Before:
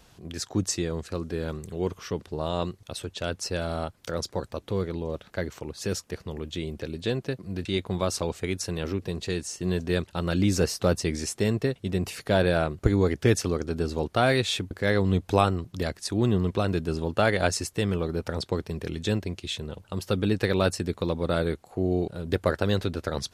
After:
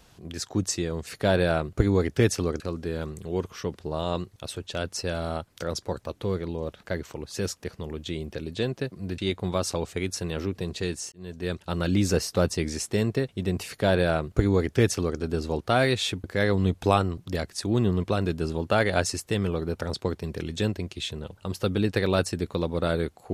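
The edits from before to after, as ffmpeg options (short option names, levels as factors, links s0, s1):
-filter_complex "[0:a]asplit=4[s0][s1][s2][s3];[s0]atrim=end=1.072[s4];[s1]atrim=start=12.128:end=13.662[s5];[s2]atrim=start=1.068:end=9.59,asetpts=PTS-STARTPTS,afade=t=out:st=8.518:d=0.004:c=hsin[s6];[s3]atrim=start=9.59,asetpts=PTS-STARTPTS,afade=t=in:d=0.58[s7];[s4][s5]acrossfade=d=0.004:c1=hsin:c2=hsin[s8];[s6][s7]concat=n=2:v=0:a=1[s9];[s8][s9]acrossfade=d=0.004:c1=hsin:c2=hsin"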